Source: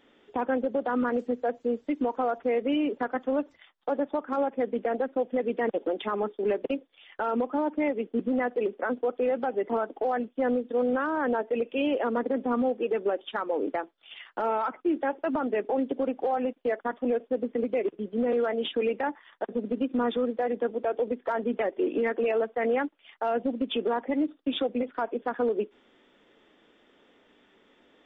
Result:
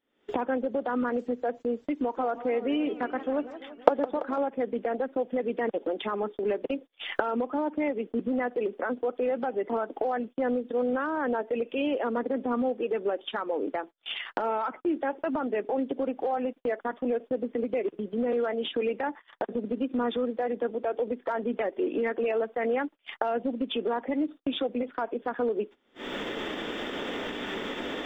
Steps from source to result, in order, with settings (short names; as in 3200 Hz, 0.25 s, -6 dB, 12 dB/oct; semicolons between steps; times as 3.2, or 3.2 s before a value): recorder AGC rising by 62 dB/s; gate -39 dBFS, range -21 dB; 1.98–4.38 warbling echo 0.169 s, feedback 66%, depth 204 cents, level -14 dB; gain -1.5 dB